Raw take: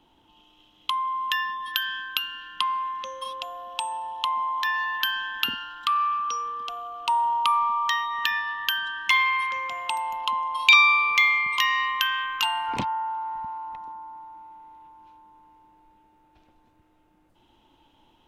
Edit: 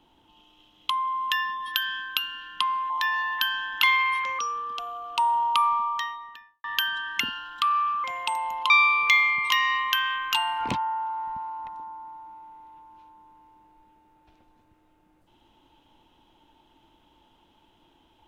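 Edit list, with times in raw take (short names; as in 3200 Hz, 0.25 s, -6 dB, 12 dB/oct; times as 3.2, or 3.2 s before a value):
2.9–4.52 cut
5.45–6.29 swap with 9.1–9.66
7.53–8.54 studio fade out
10.32–10.78 cut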